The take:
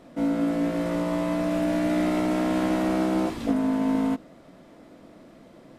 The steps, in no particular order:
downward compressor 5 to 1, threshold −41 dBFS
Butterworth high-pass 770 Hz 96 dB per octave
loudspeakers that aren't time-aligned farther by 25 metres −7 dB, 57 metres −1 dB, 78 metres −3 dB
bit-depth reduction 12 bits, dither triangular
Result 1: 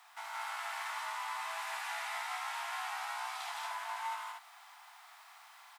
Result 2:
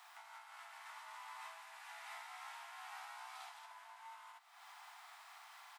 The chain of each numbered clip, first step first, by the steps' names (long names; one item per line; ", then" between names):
bit-depth reduction, then Butterworth high-pass, then downward compressor, then loudspeakers that aren't time-aligned
loudspeakers that aren't time-aligned, then bit-depth reduction, then downward compressor, then Butterworth high-pass